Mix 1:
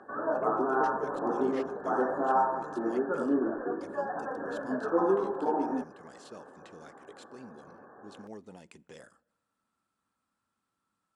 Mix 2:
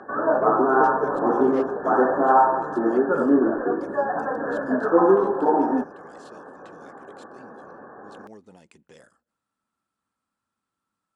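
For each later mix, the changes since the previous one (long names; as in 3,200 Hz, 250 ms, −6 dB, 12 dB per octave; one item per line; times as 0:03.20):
speech: send −7.5 dB
background +9.5 dB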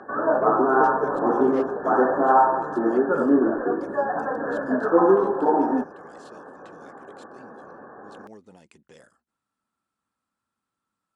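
reverb: off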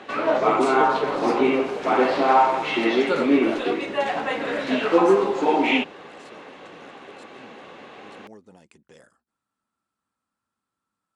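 background: remove linear-phase brick-wall low-pass 1,800 Hz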